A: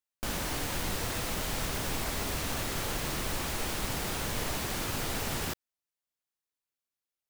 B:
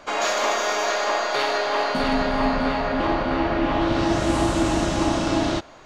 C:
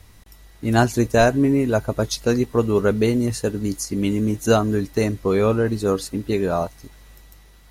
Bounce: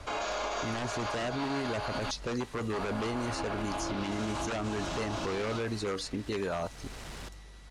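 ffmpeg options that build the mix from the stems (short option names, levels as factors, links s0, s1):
-filter_complex "[0:a]asoftclip=type=hard:threshold=0.0133,adelay=1750,volume=0.631[s0];[1:a]bandreject=f=1900:w=7.7,acrossover=split=120[s1][s2];[s2]acompressor=threshold=0.0708:ratio=6[s3];[s1][s3]amix=inputs=2:normalize=0,volume=0.631,asplit=3[s4][s5][s6];[s4]atrim=end=2.11,asetpts=PTS-STARTPTS,afade=t=out:st=2.106:d=0.004:c=hsin[s7];[s5]atrim=start=2.11:end=2.73,asetpts=PTS-STARTPTS,volume=0[s8];[s6]atrim=start=2.73,asetpts=PTS-STARTPTS,afade=t=in:d=0.004:c=hsin[s9];[s7][s8][s9]concat=n=3:v=0:a=1[s10];[2:a]aeval=exprs='0.2*(abs(mod(val(0)/0.2+3,4)-2)-1)':c=same,lowpass=f=11000:w=0.5412,lowpass=f=11000:w=1.3066,volume=0.944,asplit=2[s11][s12];[s12]apad=whole_len=398784[s13];[s0][s13]sidechaincompress=threshold=0.0447:ratio=8:attack=5.3:release=562[s14];[s14][s10][s11]amix=inputs=3:normalize=0,acrossover=split=630|1300|5600[s15][s16][s17][s18];[s15]acompressor=threshold=0.0251:ratio=4[s19];[s16]acompressor=threshold=0.0251:ratio=4[s20];[s17]acompressor=threshold=0.0178:ratio=4[s21];[s18]acompressor=threshold=0.00447:ratio=4[s22];[s19][s20][s21][s22]amix=inputs=4:normalize=0,lowpass=8600,alimiter=level_in=1.12:limit=0.0631:level=0:latency=1:release=23,volume=0.891"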